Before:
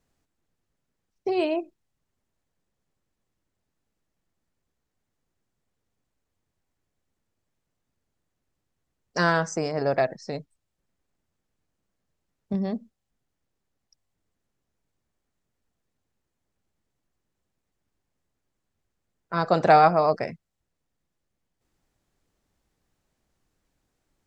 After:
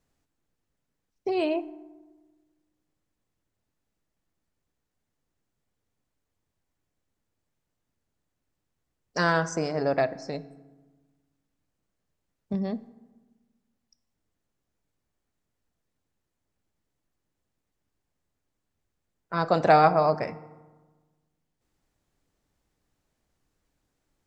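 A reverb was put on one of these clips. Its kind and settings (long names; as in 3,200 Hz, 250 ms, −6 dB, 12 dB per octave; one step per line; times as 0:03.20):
feedback delay network reverb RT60 1.3 s, low-frequency decay 1.3×, high-frequency decay 0.5×, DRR 14 dB
level −1.5 dB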